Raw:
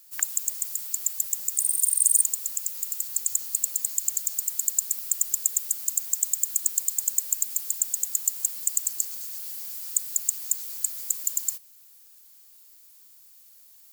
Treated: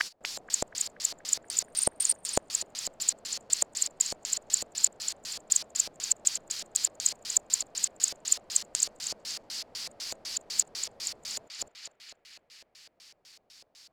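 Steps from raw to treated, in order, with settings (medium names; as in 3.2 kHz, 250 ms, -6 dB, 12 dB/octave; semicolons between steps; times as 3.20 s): time reversed locally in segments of 205 ms; band-passed feedback delay 239 ms, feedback 78%, band-pass 2.2 kHz, level -3 dB; LFO low-pass square 4 Hz 620–4900 Hz; trim +5.5 dB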